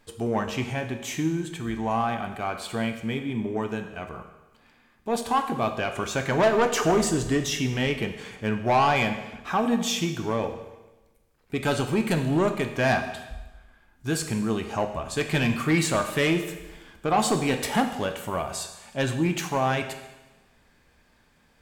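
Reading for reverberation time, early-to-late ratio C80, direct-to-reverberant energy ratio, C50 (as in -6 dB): 1.1 s, 11.0 dB, 6.5 dB, 9.0 dB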